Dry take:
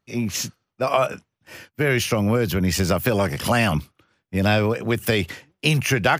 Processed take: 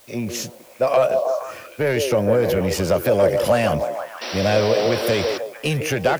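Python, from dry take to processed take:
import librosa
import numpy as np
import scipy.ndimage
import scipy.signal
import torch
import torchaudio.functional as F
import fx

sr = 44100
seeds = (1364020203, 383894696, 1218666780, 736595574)

p1 = fx.quant_dither(x, sr, seeds[0], bits=6, dither='triangular')
p2 = x + (p1 * librosa.db_to_amplitude(-11.0))
p3 = 10.0 ** (-12.0 / 20.0) * np.tanh(p2 / 10.0 ** (-12.0 / 20.0))
p4 = p3 + fx.echo_stepped(p3, sr, ms=156, hz=440.0, octaves=0.7, feedback_pct=70, wet_db=-2, dry=0)
p5 = fx.spec_paint(p4, sr, seeds[1], shape='noise', start_s=4.21, length_s=1.17, low_hz=210.0, high_hz=5900.0, level_db=-27.0)
p6 = fx.peak_eq(p5, sr, hz=560.0, db=11.0, octaves=0.71)
y = p6 * librosa.db_to_amplitude(-4.0)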